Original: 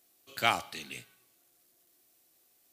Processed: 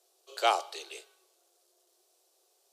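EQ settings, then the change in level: steep high-pass 360 Hz 96 dB/octave; distance through air 61 m; peaking EQ 2 kHz -14 dB 1.3 oct; +7.5 dB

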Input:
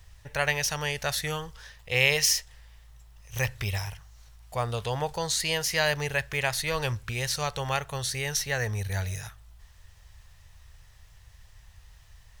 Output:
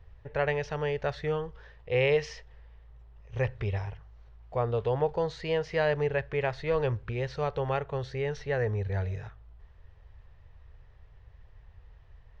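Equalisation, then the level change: distance through air 96 m; tape spacing loss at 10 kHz 32 dB; peaking EQ 430 Hz +9 dB 0.81 oct; 0.0 dB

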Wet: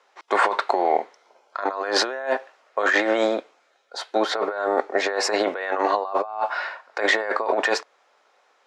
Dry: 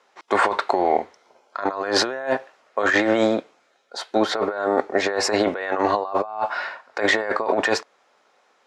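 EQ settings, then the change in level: high-pass 380 Hz 12 dB/octave; treble shelf 8.6 kHz -4.5 dB; 0.0 dB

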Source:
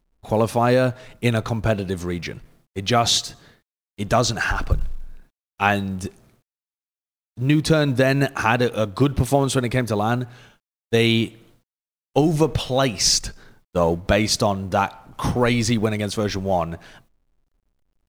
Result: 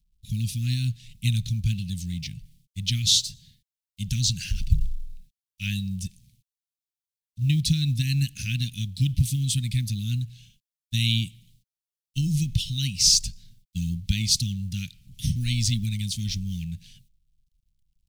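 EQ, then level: inverse Chebyshev band-stop 480–1100 Hz, stop band 70 dB; 0.0 dB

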